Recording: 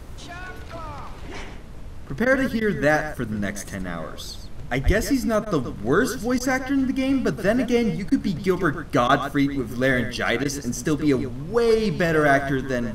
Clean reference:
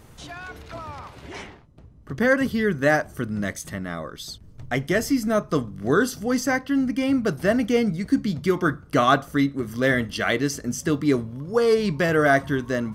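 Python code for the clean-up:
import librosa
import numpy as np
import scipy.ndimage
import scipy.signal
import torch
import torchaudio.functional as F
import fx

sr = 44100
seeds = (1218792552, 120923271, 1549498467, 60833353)

y = fx.highpass(x, sr, hz=140.0, slope=24, at=(4.85, 4.97), fade=0.02)
y = fx.fix_interpolate(y, sr, at_s=(2.25, 2.6, 5.45, 6.39, 8.1, 9.08, 10.44), length_ms=11.0)
y = fx.noise_reduce(y, sr, print_start_s=1.6, print_end_s=2.1, reduce_db=9.0)
y = fx.fix_echo_inverse(y, sr, delay_ms=125, level_db=-11.5)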